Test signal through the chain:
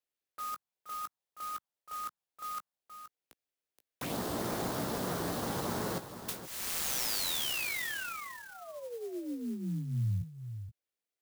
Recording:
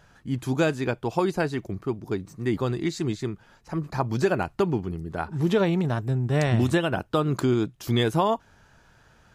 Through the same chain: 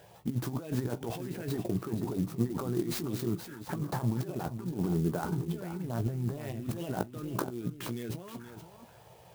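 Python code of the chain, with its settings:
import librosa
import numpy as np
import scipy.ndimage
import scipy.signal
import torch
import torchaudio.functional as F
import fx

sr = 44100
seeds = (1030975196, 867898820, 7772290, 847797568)

y = scipy.signal.sosfilt(scipy.signal.butter(2, 140.0, 'highpass', fs=sr, output='sos'), x)
y = fx.high_shelf(y, sr, hz=3100.0, db=-5.5)
y = fx.over_compress(y, sr, threshold_db=-35.0, ratio=-1.0)
y = fx.env_phaser(y, sr, low_hz=180.0, high_hz=2700.0, full_db=-30.0)
y = fx.doubler(y, sr, ms=17.0, db=-8.5)
y = y + 10.0 ** (-10.5 / 20.0) * np.pad(y, (int(474 * sr / 1000.0), 0))[:len(y)]
y = fx.clock_jitter(y, sr, seeds[0], jitter_ms=0.042)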